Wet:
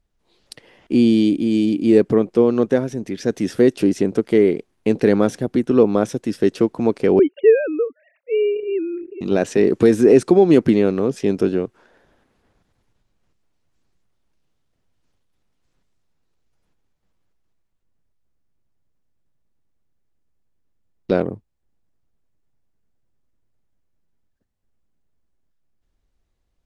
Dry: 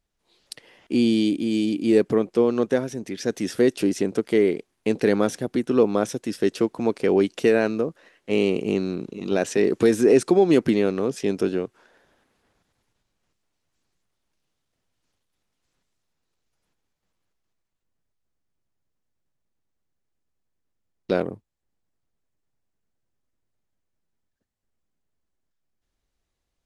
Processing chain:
0:07.19–0:09.21: three sine waves on the formant tracks
spectral tilt −1.5 dB per octave
level +2.5 dB

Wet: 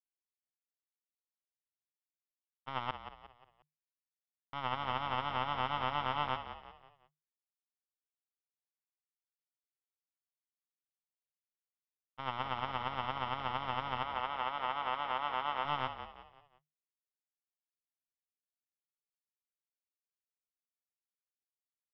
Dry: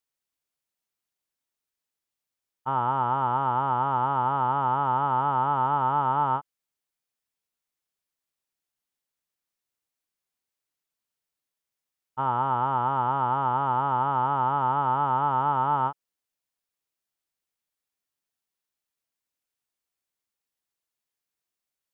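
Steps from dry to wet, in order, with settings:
power curve on the samples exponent 3
0:02.91–0:04.53: silence
0:14.03–0:15.65: bass and treble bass −15 dB, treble −7 dB
echo with shifted repeats 178 ms, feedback 40%, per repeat −38 Hz, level −10 dB
level −4 dB

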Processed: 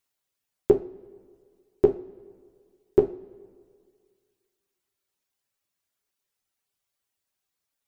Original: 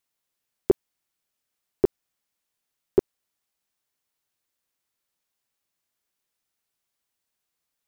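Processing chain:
stylus tracing distortion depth 0.036 ms
reverb reduction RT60 1.1 s
coupled-rooms reverb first 0.33 s, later 2 s, from −19 dB, DRR 4.5 dB

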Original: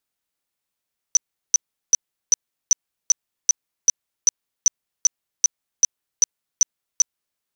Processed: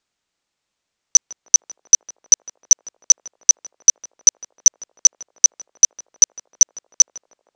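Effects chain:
Butterworth low-pass 7,700 Hz
feedback echo with a band-pass in the loop 156 ms, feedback 72%, band-pass 560 Hz, level −9 dB
level +7.5 dB

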